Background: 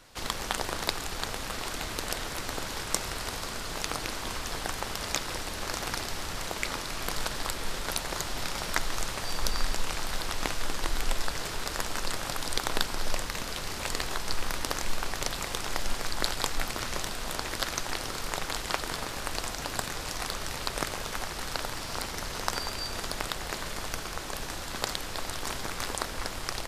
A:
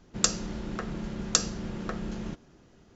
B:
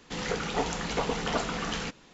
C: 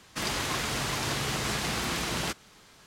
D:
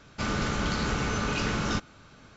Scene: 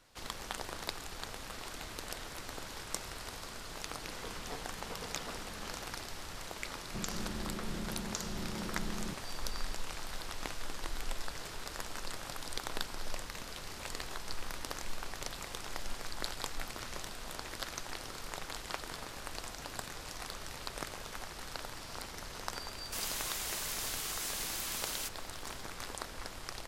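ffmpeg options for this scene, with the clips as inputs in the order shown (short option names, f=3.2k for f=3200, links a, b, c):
-filter_complex "[0:a]volume=-9.5dB[a];[1:a]acompressor=threshold=-35dB:ratio=6:attack=3.2:release=140:knee=1:detection=peak[b];[3:a]aemphasis=mode=production:type=riaa[c];[2:a]atrim=end=2.13,asetpts=PTS-STARTPTS,volume=-17.5dB,afade=t=in:d=0.004:c=hsin,afade=t=out:st=2.126:d=0.004:c=hsin,adelay=173313S[d];[b]atrim=end=2.95,asetpts=PTS-STARTPTS,volume=-1.5dB,afade=t=in:d=0.004:c=hsin,afade=t=out:st=2.946:d=0.004:c=hsin,adelay=6800[e];[c]atrim=end=2.86,asetpts=PTS-STARTPTS,volume=-14.5dB,afade=t=in:d=0.004:c=hsin,afade=t=out:st=2.856:d=0.004:c=hsin,adelay=1003716S[f];[a][d][e][f]amix=inputs=4:normalize=0"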